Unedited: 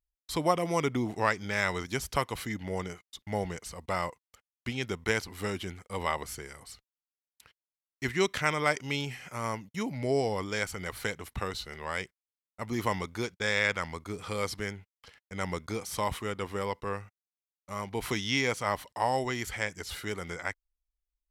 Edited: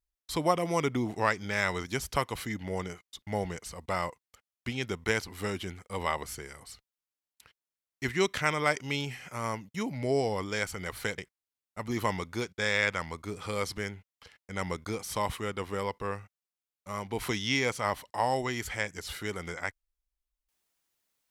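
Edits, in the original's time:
11.18–12.00 s: delete

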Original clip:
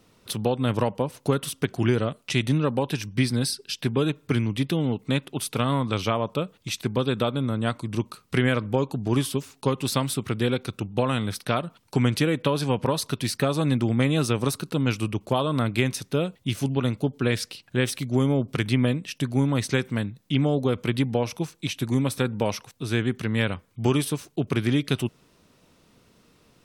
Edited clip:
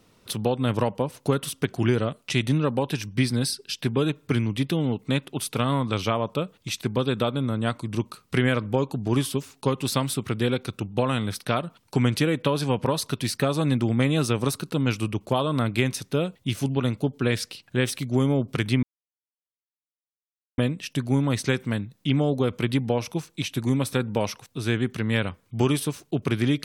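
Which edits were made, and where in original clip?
18.83 s: insert silence 1.75 s

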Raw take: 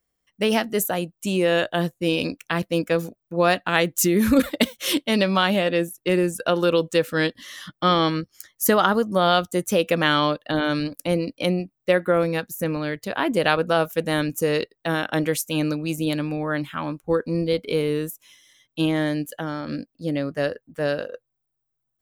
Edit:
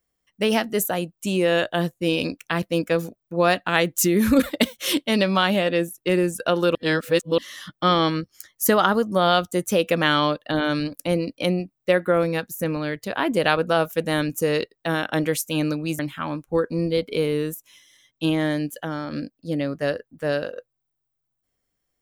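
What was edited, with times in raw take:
6.75–7.38 s: reverse
15.99–16.55 s: delete

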